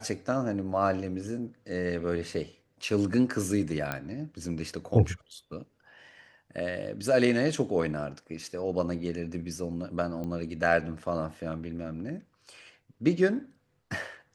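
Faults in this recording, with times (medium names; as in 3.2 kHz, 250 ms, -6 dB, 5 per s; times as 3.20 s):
3.92 s: pop -16 dBFS
10.24 s: pop -25 dBFS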